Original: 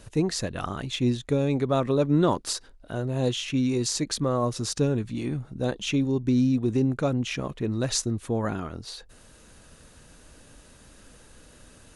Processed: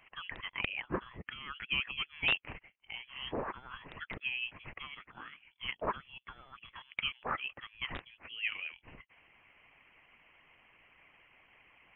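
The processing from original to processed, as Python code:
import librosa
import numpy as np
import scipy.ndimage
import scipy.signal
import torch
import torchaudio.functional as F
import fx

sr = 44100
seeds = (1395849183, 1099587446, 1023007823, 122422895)

y = fx.hpss(x, sr, part='harmonic', gain_db=-10)
y = scipy.signal.sosfilt(scipy.signal.butter(4, 890.0, 'highpass', fs=sr, output='sos'), y)
y = fx.high_shelf(y, sr, hz=2800.0, db=-7.5)
y = (np.mod(10.0 ** (22.5 / 20.0) * y + 1.0, 2.0) - 1.0) / 10.0 ** (22.5 / 20.0)
y = fx.freq_invert(y, sr, carrier_hz=3700)
y = y * librosa.db_to_amplitude(3.5)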